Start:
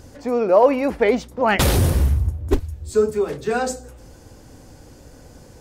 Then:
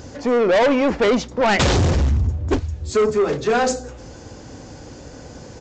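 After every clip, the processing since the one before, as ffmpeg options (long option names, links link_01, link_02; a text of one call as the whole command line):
ffmpeg -i in.wav -af "highpass=frequency=84:poles=1,aresample=16000,asoftclip=type=tanh:threshold=-21dB,aresample=44100,volume=8dB" out.wav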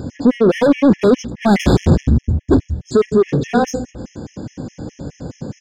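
ffmpeg -i in.wav -af "asoftclip=type=tanh:threshold=-16.5dB,equalizer=frequency=190:width=0.55:gain=15,afftfilt=real='re*gt(sin(2*PI*4.8*pts/sr)*(1-2*mod(floor(b*sr/1024/1700),2)),0)':imag='im*gt(sin(2*PI*4.8*pts/sr)*(1-2*mod(floor(b*sr/1024/1700),2)),0)':win_size=1024:overlap=0.75,volume=1.5dB" out.wav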